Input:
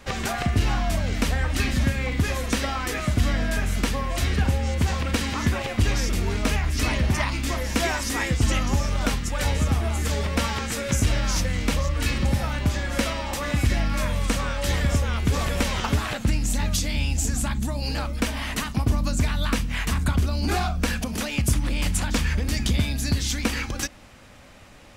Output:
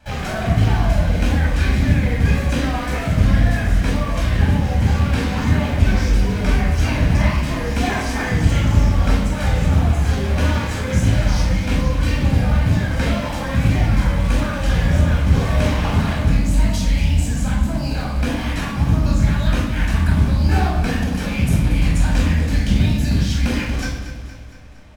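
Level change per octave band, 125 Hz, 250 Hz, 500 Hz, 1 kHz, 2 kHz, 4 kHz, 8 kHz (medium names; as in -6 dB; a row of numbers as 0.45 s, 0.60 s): +8.0 dB, +7.0 dB, +4.5 dB, +3.5 dB, +3.0 dB, 0.0 dB, -4.0 dB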